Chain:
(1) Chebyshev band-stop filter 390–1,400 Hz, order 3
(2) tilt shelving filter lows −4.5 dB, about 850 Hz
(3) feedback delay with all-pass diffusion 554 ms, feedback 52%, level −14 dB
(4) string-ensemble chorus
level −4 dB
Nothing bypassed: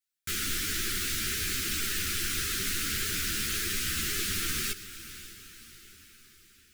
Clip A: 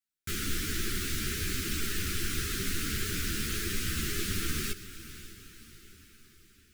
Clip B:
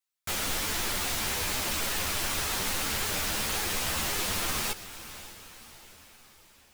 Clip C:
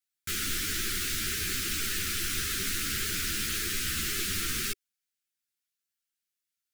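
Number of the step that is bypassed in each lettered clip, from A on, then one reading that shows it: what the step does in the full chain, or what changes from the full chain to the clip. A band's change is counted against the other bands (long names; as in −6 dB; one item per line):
2, 125 Hz band +7.0 dB
1, 1 kHz band +8.0 dB
3, change in momentary loudness spread −13 LU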